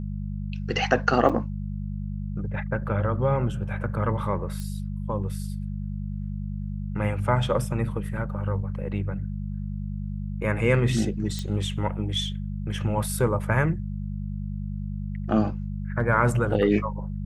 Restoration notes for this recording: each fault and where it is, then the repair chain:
mains hum 50 Hz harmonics 4 −31 dBFS
0:01.29–0:01.30: drop-out 6 ms
0:04.60: click −21 dBFS
0:11.39: click −18 dBFS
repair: click removal
hum removal 50 Hz, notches 4
repair the gap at 0:01.29, 6 ms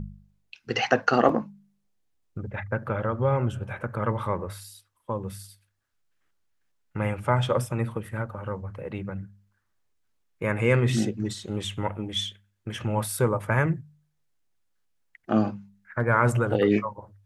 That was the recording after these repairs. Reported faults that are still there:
none of them is left

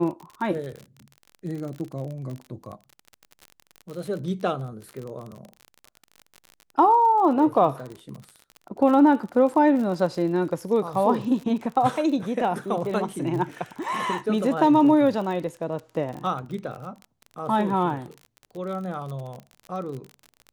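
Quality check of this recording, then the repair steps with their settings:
surface crackle 40 per second −32 dBFS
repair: click removal

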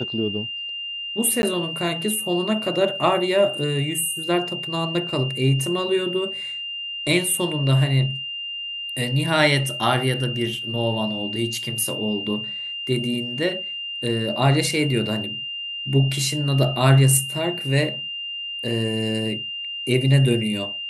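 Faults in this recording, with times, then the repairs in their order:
whistle 2,800 Hz −28 dBFS
0:01.42–0:01.43: drop-out 11 ms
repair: notch filter 2,800 Hz, Q 30
repair the gap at 0:01.42, 11 ms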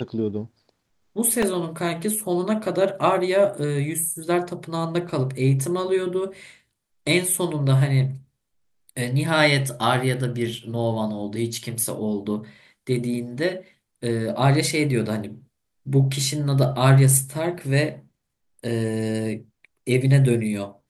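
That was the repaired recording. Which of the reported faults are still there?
none of them is left

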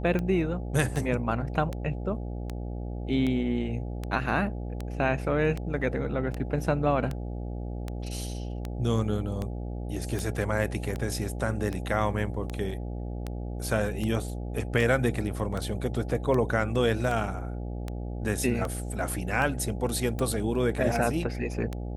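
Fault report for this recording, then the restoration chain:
mains buzz 60 Hz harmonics 14 −34 dBFS
scratch tick 78 rpm −19 dBFS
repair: click removal
hum removal 60 Hz, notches 14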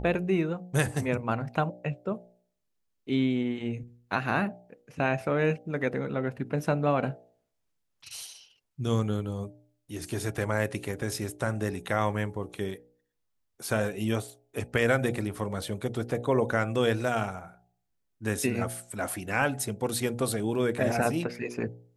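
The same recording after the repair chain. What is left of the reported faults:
none of them is left

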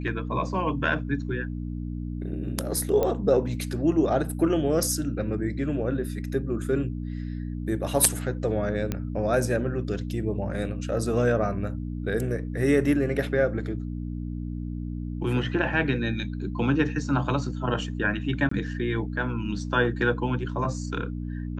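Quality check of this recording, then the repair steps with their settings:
mains hum 60 Hz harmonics 5 −32 dBFS
0:03.03: click −13 dBFS
0:08.92: click −14 dBFS
0:18.49–0:18.51: drop-out 24 ms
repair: click removal
hum removal 60 Hz, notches 5
repair the gap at 0:18.49, 24 ms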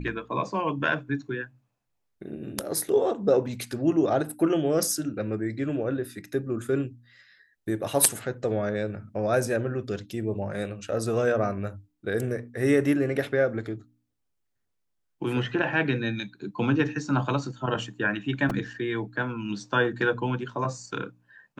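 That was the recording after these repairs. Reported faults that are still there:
none of them is left

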